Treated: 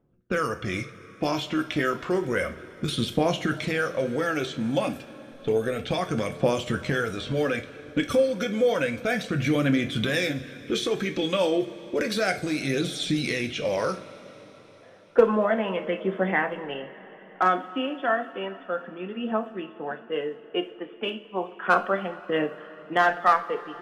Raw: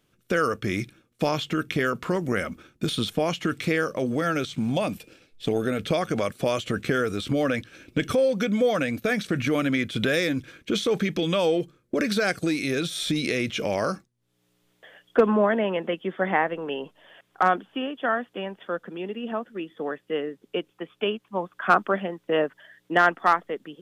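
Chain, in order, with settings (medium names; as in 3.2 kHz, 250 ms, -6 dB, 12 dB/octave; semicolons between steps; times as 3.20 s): phaser 0.31 Hz, delay 3.7 ms, feedback 43%; level-controlled noise filter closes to 850 Hz, open at -22 dBFS; two-slope reverb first 0.29 s, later 4.9 s, from -21 dB, DRR 5 dB; trim -2.5 dB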